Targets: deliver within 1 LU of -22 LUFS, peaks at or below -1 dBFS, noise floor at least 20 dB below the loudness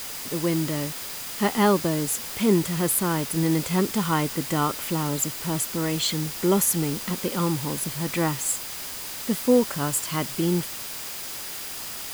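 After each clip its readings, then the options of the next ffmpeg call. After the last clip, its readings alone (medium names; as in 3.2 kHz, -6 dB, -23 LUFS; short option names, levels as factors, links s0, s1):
steady tone 4.9 kHz; tone level -46 dBFS; noise floor -35 dBFS; noise floor target -45 dBFS; loudness -25.0 LUFS; peak level -8.0 dBFS; loudness target -22.0 LUFS
-> -af "bandreject=f=4900:w=30"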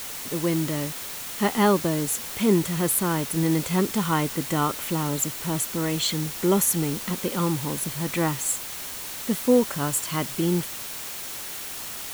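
steady tone not found; noise floor -35 dBFS; noise floor target -45 dBFS
-> -af "afftdn=nr=10:nf=-35"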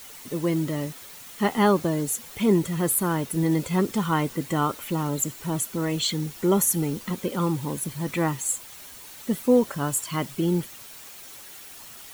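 noise floor -44 dBFS; noise floor target -45 dBFS
-> -af "afftdn=nr=6:nf=-44"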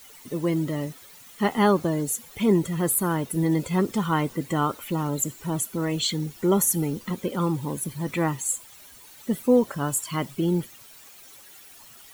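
noise floor -49 dBFS; loudness -25.5 LUFS; peak level -9.0 dBFS; loudness target -22.0 LUFS
-> -af "volume=1.5"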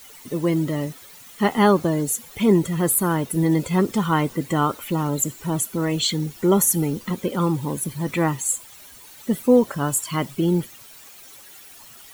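loudness -22.0 LUFS; peak level -5.5 dBFS; noise floor -45 dBFS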